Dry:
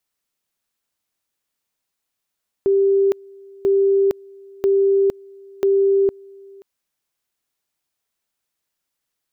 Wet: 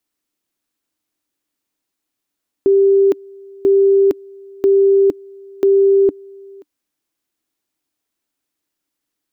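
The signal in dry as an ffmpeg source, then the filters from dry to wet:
-f lavfi -i "aevalsrc='pow(10,(-12.5-26.5*gte(mod(t,0.99),0.46))/20)*sin(2*PI*393*t)':duration=3.96:sample_rate=44100"
-af "equalizer=frequency=300:width_type=o:width=0.51:gain=13.5"

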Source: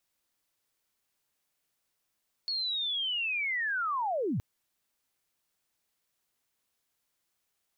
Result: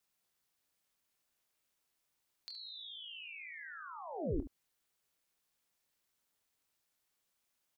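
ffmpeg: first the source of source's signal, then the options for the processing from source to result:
-f lavfi -i "aevalsrc='pow(10,(-29.5+2*t/1.92)/20)*sin(2*PI*(4400*t-4318*t*t/(2*1.92)))':duration=1.92:sample_rate=44100"
-filter_complex "[0:a]acrossover=split=430[link_01][link_02];[link_02]acompressor=threshold=-47dB:ratio=6[link_03];[link_01][link_03]amix=inputs=2:normalize=0,aeval=exprs='val(0)*sin(2*PI*160*n/s)':channel_layout=same,asplit=2[link_04][link_05];[link_05]aecho=0:1:25|71:0.316|0.266[link_06];[link_04][link_06]amix=inputs=2:normalize=0"

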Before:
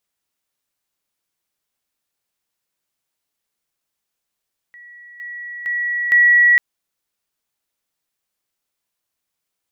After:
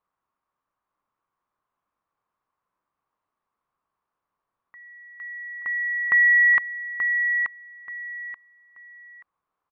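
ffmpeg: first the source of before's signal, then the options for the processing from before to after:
-f lavfi -i "aevalsrc='pow(10,(-38.5+10*floor(t/0.46))/20)*sin(2*PI*1930*t)':duration=1.84:sample_rate=44100"
-af "lowpass=1400,equalizer=frequency=1100:width_type=o:width=0.6:gain=14.5,aecho=1:1:881|1762|2643:0.473|0.118|0.0296"

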